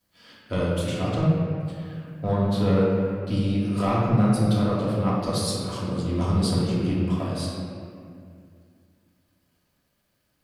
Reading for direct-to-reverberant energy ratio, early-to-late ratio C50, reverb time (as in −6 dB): −7.0 dB, −2.0 dB, 2.3 s